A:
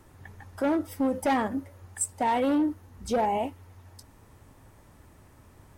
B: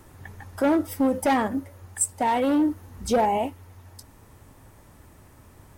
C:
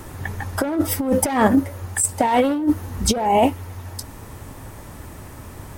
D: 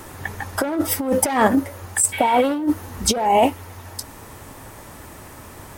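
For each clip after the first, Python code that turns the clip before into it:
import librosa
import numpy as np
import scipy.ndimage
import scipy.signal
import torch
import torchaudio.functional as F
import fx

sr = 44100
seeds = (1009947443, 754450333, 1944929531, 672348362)

y1 = fx.high_shelf(x, sr, hz=9600.0, db=5.0)
y1 = fx.rider(y1, sr, range_db=3, speed_s=0.5)
y1 = fx.quant_float(y1, sr, bits=6)
y1 = y1 * librosa.db_to_amplitude(4.5)
y2 = fx.over_compress(y1, sr, threshold_db=-25.0, ratio=-0.5)
y2 = y2 * librosa.db_to_amplitude(9.0)
y3 = fx.spec_repair(y2, sr, seeds[0], start_s=2.15, length_s=0.22, low_hz=1500.0, high_hz=10000.0, source='after')
y3 = fx.low_shelf(y3, sr, hz=240.0, db=-9.0)
y3 = y3 * librosa.db_to_amplitude(2.0)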